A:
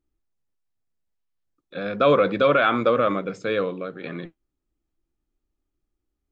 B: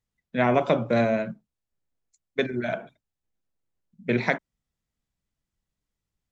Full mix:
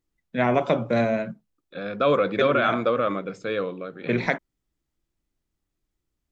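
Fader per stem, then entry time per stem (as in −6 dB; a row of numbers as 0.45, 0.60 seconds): −3.0, 0.0 decibels; 0.00, 0.00 seconds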